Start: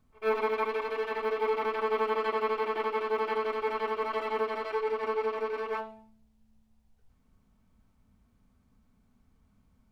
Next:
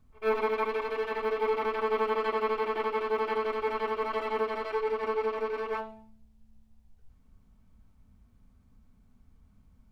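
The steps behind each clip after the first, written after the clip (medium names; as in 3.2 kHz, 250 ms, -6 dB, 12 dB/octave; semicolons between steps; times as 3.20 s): bass shelf 120 Hz +9 dB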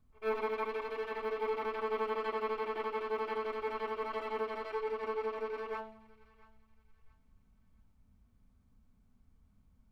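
thinning echo 676 ms, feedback 37%, high-pass 1.1 kHz, level -20 dB; trim -6.5 dB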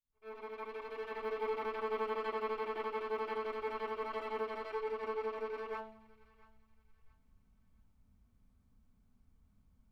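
fade-in on the opening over 1.32 s; trim -2 dB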